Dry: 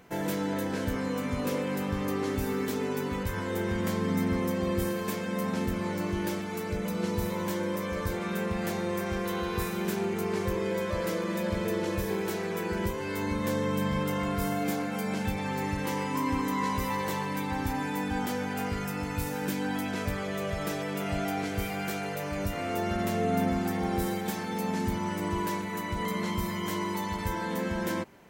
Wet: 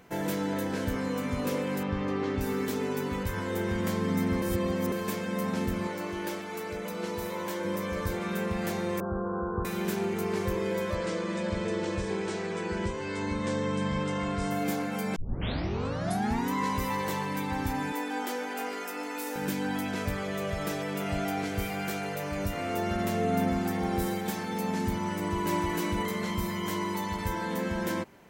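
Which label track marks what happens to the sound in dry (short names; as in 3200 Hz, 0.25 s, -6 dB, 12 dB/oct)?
1.830000	2.410000	LPF 4000 Hz
4.420000	4.920000	reverse
5.870000	7.650000	tone controls bass -11 dB, treble -2 dB
9.000000	9.650000	steep low-pass 1500 Hz 96 dB/oct
10.950000	14.510000	elliptic low-pass 8600 Hz
15.160000	15.160000	tape start 1.37 s
17.920000	19.360000	steep high-pass 260 Hz 48 dB/oct
25.140000	25.710000	echo throw 0.31 s, feedback 35%, level 0 dB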